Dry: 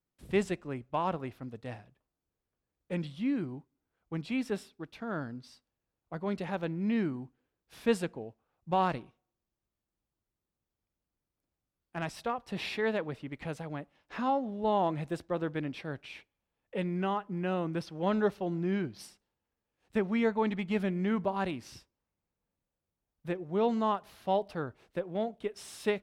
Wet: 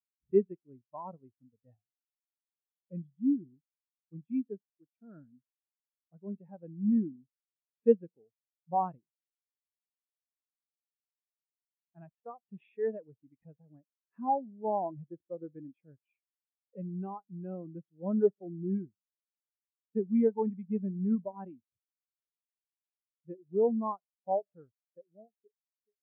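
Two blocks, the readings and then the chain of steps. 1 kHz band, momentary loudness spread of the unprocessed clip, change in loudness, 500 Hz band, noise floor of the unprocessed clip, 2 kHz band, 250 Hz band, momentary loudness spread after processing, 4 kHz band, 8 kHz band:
−3.5 dB, 14 LU, +0.5 dB, −0.5 dB, below −85 dBFS, below −20 dB, −1.0 dB, 20 LU, below −35 dB, below −25 dB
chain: fade-out on the ending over 1.71 s
downsampling to 8,000 Hz
every bin expanded away from the loudest bin 2.5 to 1
level +4.5 dB

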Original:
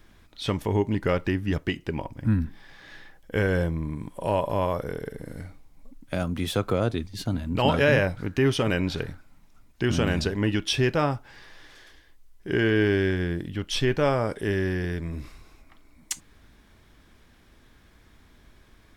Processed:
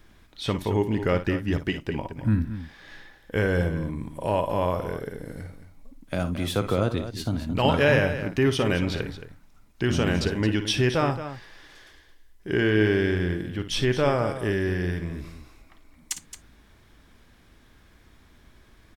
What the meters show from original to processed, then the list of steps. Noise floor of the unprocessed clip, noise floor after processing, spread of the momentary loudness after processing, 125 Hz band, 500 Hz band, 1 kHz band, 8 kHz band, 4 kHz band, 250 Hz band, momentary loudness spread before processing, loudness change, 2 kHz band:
−57 dBFS, −56 dBFS, 13 LU, +0.5 dB, +0.5 dB, +0.5 dB, +0.5 dB, +0.5 dB, +0.5 dB, 13 LU, +0.5 dB, +0.5 dB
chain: multi-tap delay 56/221 ms −11.5/−11.5 dB

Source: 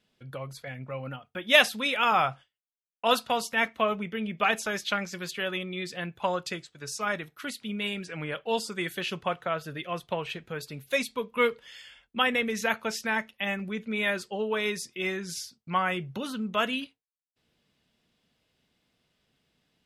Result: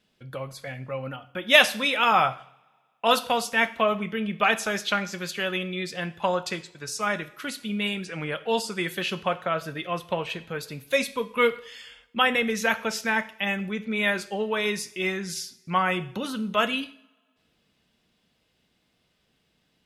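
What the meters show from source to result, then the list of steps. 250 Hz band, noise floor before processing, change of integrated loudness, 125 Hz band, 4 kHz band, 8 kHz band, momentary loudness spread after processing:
+3.5 dB, below −85 dBFS, +3.5 dB, +3.0 dB, +3.5 dB, +3.5 dB, 13 LU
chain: coupled-rooms reverb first 0.55 s, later 1.9 s, from −24 dB, DRR 11 dB
level +3 dB

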